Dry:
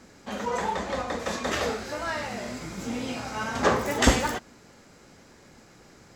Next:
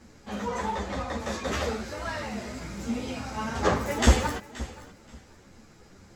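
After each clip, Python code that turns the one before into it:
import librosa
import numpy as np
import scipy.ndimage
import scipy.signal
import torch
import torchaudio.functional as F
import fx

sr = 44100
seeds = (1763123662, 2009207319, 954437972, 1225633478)

y = fx.low_shelf(x, sr, hz=140.0, db=10.5)
y = fx.echo_feedback(y, sr, ms=527, feedback_pct=20, wet_db=-17.0)
y = fx.ensemble(y, sr)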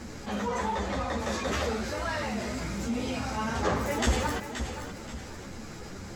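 y = fx.env_flatten(x, sr, amount_pct=50)
y = F.gain(torch.from_numpy(y), -8.5).numpy()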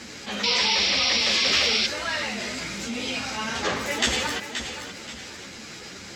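y = fx.weighting(x, sr, curve='D')
y = fx.spec_paint(y, sr, seeds[0], shape='noise', start_s=0.43, length_s=1.44, low_hz=2000.0, high_hz=5800.0, level_db=-23.0)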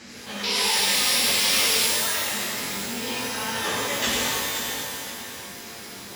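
y = fx.rev_shimmer(x, sr, seeds[1], rt60_s=1.5, semitones=12, shimmer_db=-2, drr_db=-1.5)
y = F.gain(torch.from_numpy(y), -5.5).numpy()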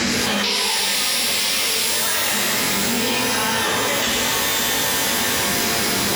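y = fx.env_flatten(x, sr, amount_pct=100)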